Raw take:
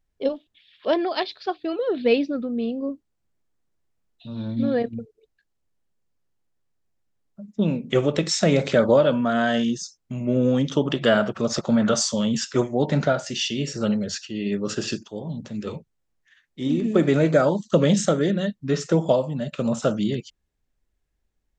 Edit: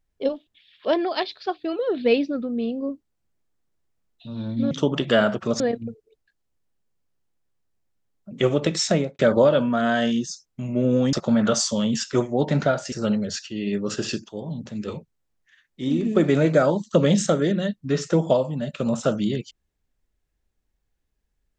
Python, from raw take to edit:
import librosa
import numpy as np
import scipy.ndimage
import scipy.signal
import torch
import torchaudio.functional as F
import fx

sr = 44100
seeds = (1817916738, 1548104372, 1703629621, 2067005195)

y = fx.studio_fade_out(x, sr, start_s=8.39, length_s=0.32)
y = fx.edit(y, sr, fx.cut(start_s=7.42, length_s=0.41),
    fx.move(start_s=10.65, length_s=0.89, to_s=4.71),
    fx.cut(start_s=13.33, length_s=0.38), tone=tone)